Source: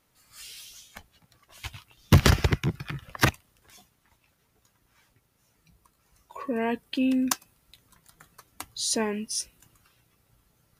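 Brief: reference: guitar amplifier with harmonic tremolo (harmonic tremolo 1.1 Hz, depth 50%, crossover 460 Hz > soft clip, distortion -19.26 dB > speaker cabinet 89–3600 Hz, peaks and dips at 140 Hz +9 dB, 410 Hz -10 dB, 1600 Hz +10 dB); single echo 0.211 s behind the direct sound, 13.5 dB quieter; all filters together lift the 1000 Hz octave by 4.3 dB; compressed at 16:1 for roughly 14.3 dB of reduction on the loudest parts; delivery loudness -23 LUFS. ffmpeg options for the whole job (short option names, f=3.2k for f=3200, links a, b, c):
-filter_complex "[0:a]equalizer=f=1k:t=o:g=4,acompressor=threshold=-26dB:ratio=16,aecho=1:1:211:0.211,acrossover=split=460[a][b];[a]aeval=exprs='val(0)*(1-0.5/2+0.5/2*cos(2*PI*1.1*n/s))':c=same[c];[b]aeval=exprs='val(0)*(1-0.5/2-0.5/2*cos(2*PI*1.1*n/s))':c=same[d];[c][d]amix=inputs=2:normalize=0,asoftclip=threshold=-21.5dB,highpass=89,equalizer=f=140:t=q:w=4:g=9,equalizer=f=410:t=q:w=4:g=-10,equalizer=f=1.6k:t=q:w=4:g=10,lowpass=f=3.6k:w=0.5412,lowpass=f=3.6k:w=1.3066,volume=13dB"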